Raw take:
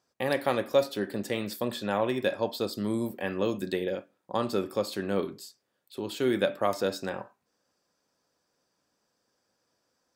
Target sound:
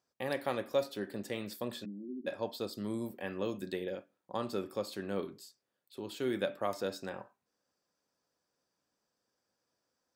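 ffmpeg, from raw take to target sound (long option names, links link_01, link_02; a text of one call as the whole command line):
ffmpeg -i in.wav -filter_complex "[0:a]asplit=3[link_01][link_02][link_03];[link_01]afade=type=out:start_time=1.84:duration=0.02[link_04];[link_02]asuperpass=centerf=260:order=8:qfactor=1.7,afade=type=in:start_time=1.84:duration=0.02,afade=type=out:start_time=2.26:duration=0.02[link_05];[link_03]afade=type=in:start_time=2.26:duration=0.02[link_06];[link_04][link_05][link_06]amix=inputs=3:normalize=0,volume=-7.5dB" out.wav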